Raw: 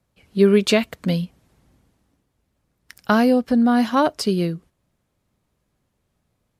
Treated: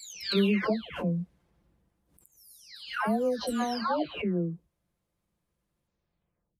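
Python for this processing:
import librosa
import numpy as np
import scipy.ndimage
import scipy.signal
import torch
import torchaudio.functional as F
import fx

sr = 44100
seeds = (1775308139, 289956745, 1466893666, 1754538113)

y = fx.spec_delay(x, sr, highs='early', ms=721)
y = fx.pre_swell(y, sr, db_per_s=120.0)
y = y * librosa.db_to_amplitude(-7.5)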